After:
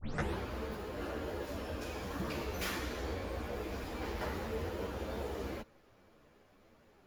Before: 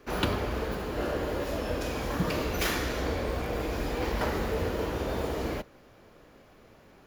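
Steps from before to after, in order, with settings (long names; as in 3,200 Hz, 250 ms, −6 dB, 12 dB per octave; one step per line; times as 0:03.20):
turntable start at the beginning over 0.37 s
string-ensemble chorus
level −5.5 dB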